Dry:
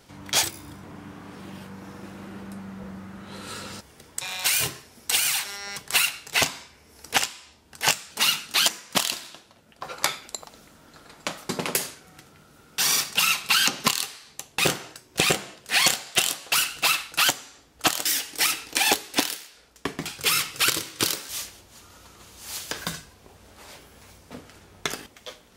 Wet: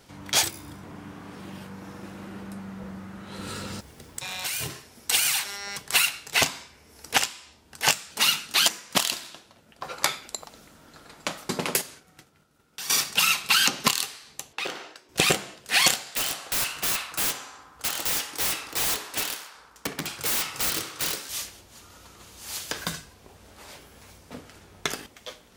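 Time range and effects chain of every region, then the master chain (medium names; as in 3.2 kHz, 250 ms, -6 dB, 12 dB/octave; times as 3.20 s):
3.39–4.70 s: bass shelf 350 Hz +7 dB + compression 2.5:1, threshold -30 dBFS + small samples zeroed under -52 dBFS
11.81–12.90 s: expander -46 dBFS + compression 2:1, threshold -43 dBFS
14.53–15.09 s: three-band isolator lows -20 dB, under 270 Hz, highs -14 dB, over 5.4 kHz + compression 2.5:1, threshold -30 dBFS
16.02–21.15 s: high-pass 51 Hz + integer overflow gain 20 dB + band-passed feedback delay 63 ms, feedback 85%, band-pass 1.1 kHz, level -9 dB
whole clip: none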